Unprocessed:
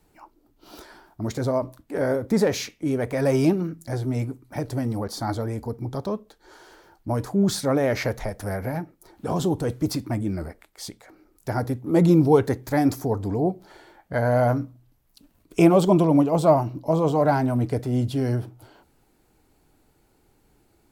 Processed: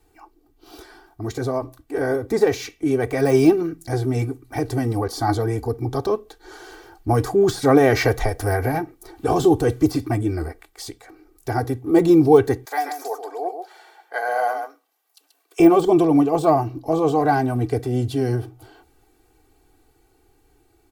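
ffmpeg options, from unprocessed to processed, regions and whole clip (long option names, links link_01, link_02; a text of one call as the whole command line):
ffmpeg -i in.wav -filter_complex "[0:a]asettb=1/sr,asplit=3[link_01][link_02][link_03];[link_01]atrim=end=12.654[link_04];[link_02]atrim=start=12.65:end=15.6,asetpts=PTS-STARTPTS,afade=type=in:duration=0.004:curve=qsin,afade=type=out:start_time=2.946:duration=0.004:curve=qsin,highpass=frequency=550:width=0.5412,highpass=frequency=550:width=1.3066,aecho=1:1:133:0.447,atrim=end_sample=130095[link_05];[link_03]atrim=start=15.596[link_06];[link_04][link_05]acrossfade=duration=0.004:curve1=hsin:curve2=qsin[link_07];[link_07][link_06]acrossfade=duration=0.004:curve1=qsin:curve2=hsin,deesser=0.75,aecho=1:1:2.6:0.83,dynaudnorm=framelen=790:gausssize=7:maxgain=11.5dB,volume=-1dB" out.wav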